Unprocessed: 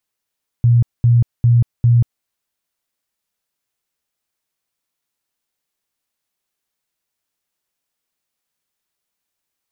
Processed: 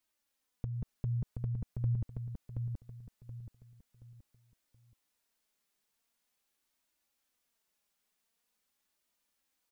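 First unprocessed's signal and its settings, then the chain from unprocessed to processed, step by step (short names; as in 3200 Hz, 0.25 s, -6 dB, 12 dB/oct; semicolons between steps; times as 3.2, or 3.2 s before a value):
tone bursts 119 Hz, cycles 22, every 0.40 s, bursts 4, -8 dBFS
limiter -19.5 dBFS; flange 0.44 Hz, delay 3.1 ms, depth 1.9 ms, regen +1%; on a send: feedback echo 0.726 s, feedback 35%, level -4 dB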